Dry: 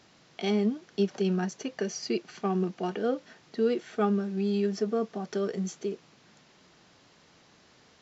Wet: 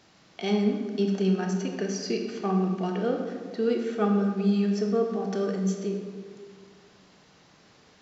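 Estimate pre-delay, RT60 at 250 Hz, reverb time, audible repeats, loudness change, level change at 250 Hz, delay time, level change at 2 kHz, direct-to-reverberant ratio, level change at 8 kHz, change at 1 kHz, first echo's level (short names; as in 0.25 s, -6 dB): 23 ms, 2.1 s, 1.8 s, none, +3.0 dB, +4.0 dB, none, +1.5 dB, 2.5 dB, n/a, +2.0 dB, none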